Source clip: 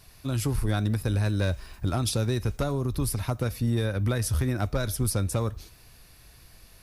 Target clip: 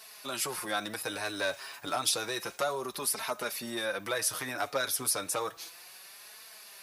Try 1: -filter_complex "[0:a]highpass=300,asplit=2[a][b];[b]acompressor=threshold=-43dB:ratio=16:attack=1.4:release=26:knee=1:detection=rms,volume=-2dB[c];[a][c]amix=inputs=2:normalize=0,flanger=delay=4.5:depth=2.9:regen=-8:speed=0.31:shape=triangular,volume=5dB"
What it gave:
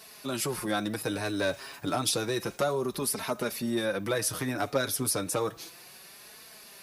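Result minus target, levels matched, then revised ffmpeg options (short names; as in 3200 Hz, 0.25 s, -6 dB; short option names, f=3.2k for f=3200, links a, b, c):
250 Hz band +8.0 dB
-filter_complex "[0:a]highpass=670,asplit=2[a][b];[b]acompressor=threshold=-43dB:ratio=16:attack=1.4:release=26:knee=1:detection=rms,volume=-2dB[c];[a][c]amix=inputs=2:normalize=0,flanger=delay=4.5:depth=2.9:regen=-8:speed=0.31:shape=triangular,volume=5dB"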